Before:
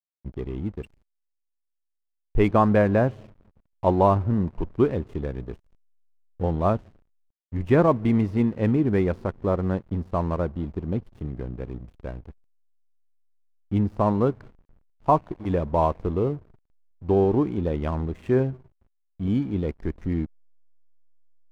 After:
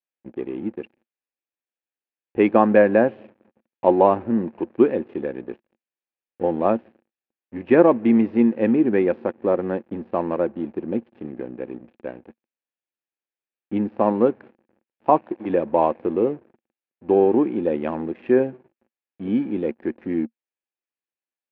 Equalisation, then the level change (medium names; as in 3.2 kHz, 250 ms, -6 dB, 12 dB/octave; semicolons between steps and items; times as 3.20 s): cabinet simulation 230–3700 Hz, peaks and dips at 230 Hz +10 dB, 340 Hz +10 dB, 520 Hz +9 dB, 810 Hz +7 dB, 1.7 kHz +8 dB, 2.5 kHz +8 dB; -2.5 dB